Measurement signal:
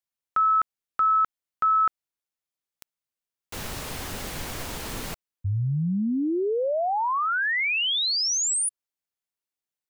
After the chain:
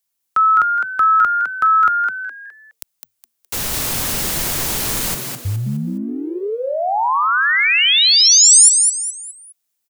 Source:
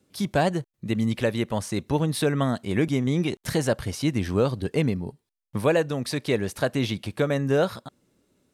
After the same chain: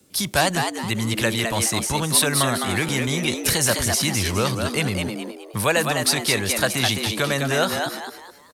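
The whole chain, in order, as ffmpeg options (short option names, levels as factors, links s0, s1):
-filter_complex "[0:a]highshelf=f=4800:g=11.5,acrossover=split=100|730|3600[s0][s1][s2][s3];[s1]acompressor=threshold=0.0224:ratio=6:attack=0.24:release=42:detection=peak[s4];[s0][s4][s2][s3]amix=inputs=4:normalize=0,asplit=5[s5][s6][s7][s8][s9];[s6]adelay=208,afreqshift=110,volume=0.562[s10];[s7]adelay=416,afreqshift=220,volume=0.197[s11];[s8]adelay=624,afreqshift=330,volume=0.0692[s12];[s9]adelay=832,afreqshift=440,volume=0.024[s13];[s5][s10][s11][s12][s13]amix=inputs=5:normalize=0,volume=2.24"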